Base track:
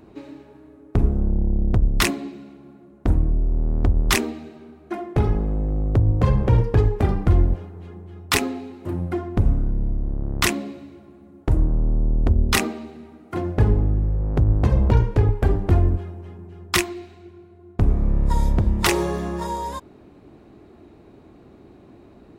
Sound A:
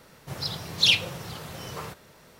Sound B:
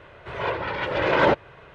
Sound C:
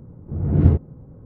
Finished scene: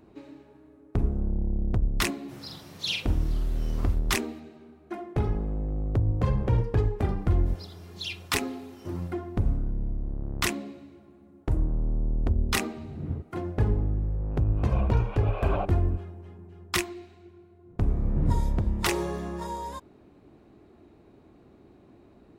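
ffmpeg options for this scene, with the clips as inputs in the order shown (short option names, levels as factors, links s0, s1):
-filter_complex "[1:a]asplit=2[s0][s1];[3:a]asplit=2[s2][s3];[0:a]volume=0.447[s4];[s0]asplit=2[s5][s6];[s6]adelay=45,volume=0.668[s7];[s5][s7]amix=inputs=2:normalize=0[s8];[s1]aecho=1:1:2.9:0.52[s9];[2:a]asplit=3[s10][s11][s12];[s10]bandpass=f=730:t=q:w=8,volume=1[s13];[s11]bandpass=f=1090:t=q:w=8,volume=0.501[s14];[s12]bandpass=f=2440:t=q:w=8,volume=0.355[s15];[s13][s14][s15]amix=inputs=3:normalize=0[s16];[s8]atrim=end=2.39,asetpts=PTS-STARTPTS,volume=0.266,afade=t=in:d=0.004:c=hsin,afade=t=out:st=2.386:d=0.004:c=hsin,adelay=2010[s17];[s9]atrim=end=2.39,asetpts=PTS-STARTPTS,volume=0.141,afade=t=in:d=0.004:c=hsin,afade=t=out:st=2.386:d=0.004:c=hsin,adelay=7180[s18];[s2]atrim=end=1.25,asetpts=PTS-STARTPTS,volume=0.126,afade=t=in:d=0.004:c=hsin,afade=t=out:st=1.246:d=0.004:c=hsin,adelay=12450[s19];[s16]atrim=end=1.74,asetpts=PTS-STARTPTS,volume=0.75,afade=t=in:d=0.004:c=hsin,afade=t=out:st=1.736:d=0.004:c=hsin,adelay=14310[s20];[s3]atrim=end=1.25,asetpts=PTS-STARTPTS,volume=0.251,afade=t=in:d=0.1,afade=t=out:st=1.15:d=0.1,adelay=17630[s21];[s4][s17][s18][s19][s20][s21]amix=inputs=6:normalize=0"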